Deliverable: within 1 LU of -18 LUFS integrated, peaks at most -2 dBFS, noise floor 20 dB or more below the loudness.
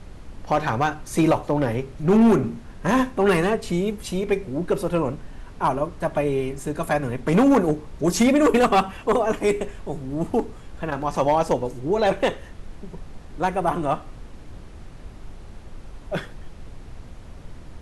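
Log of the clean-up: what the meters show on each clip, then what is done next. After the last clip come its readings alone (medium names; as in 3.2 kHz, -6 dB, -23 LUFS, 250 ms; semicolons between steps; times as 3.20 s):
clipped samples 0.9%; clipping level -11.5 dBFS; noise floor -41 dBFS; noise floor target -43 dBFS; loudness -22.5 LUFS; peak level -11.5 dBFS; loudness target -18.0 LUFS
-> clip repair -11.5 dBFS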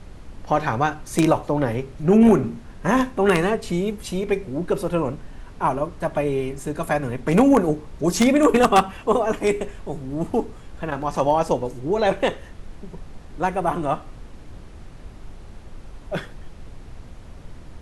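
clipped samples 0.0%; noise floor -41 dBFS; noise floor target -42 dBFS
-> noise print and reduce 6 dB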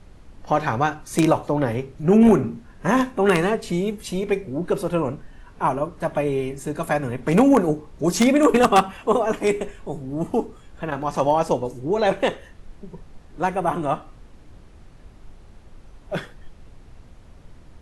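noise floor -47 dBFS; loudness -21.5 LUFS; peak level -2.5 dBFS; loudness target -18.0 LUFS
-> trim +3.5 dB; peak limiter -2 dBFS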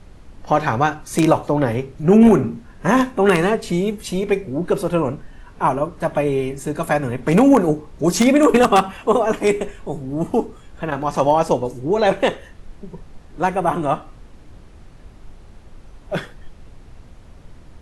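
loudness -18.5 LUFS; peak level -2.0 dBFS; noise floor -44 dBFS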